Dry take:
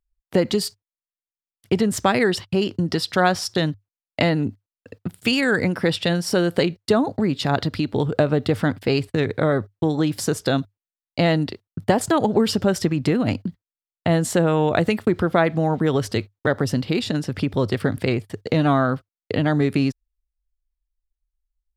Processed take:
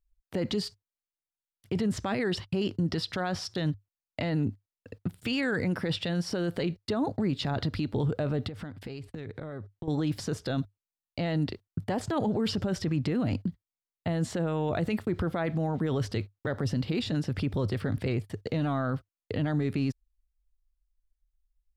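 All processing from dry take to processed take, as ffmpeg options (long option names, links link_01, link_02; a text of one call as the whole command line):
ffmpeg -i in.wav -filter_complex "[0:a]asettb=1/sr,asplit=3[link_01][link_02][link_03];[link_01]atrim=end=8.484[link_04];[link_02]atrim=start=8.48:end=9.88,asetpts=PTS-STARTPTS,afade=type=in:duration=0.004:curve=qsin,afade=type=out:start_time=1.396:duration=0.004:curve=qsin,highshelf=frequency=11000:gain=-7.5,acompressor=threshold=-32dB:ratio=8:attack=3.2:release=140:knee=1:detection=peak[link_05];[link_03]atrim=start=9.876[link_06];[link_04][link_05]acrossfade=duration=0.004:curve1=hsin:curve2=qsin[link_07];[link_07][link_06]acrossfade=duration=0.004:curve1=qsin:curve2=hsin,acrossover=split=5600[link_08][link_09];[link_09]acompressor=threshold=-46dB:ratio=4:attack=1:release=60[link_10];[link_08][link_10]amix=inputs=2:normalize=0,lowshelf=frequency=110:gain=10,alimiter=limit=-15dB:level=0:latency=1:release=12,volume=-5.5dB" out.wav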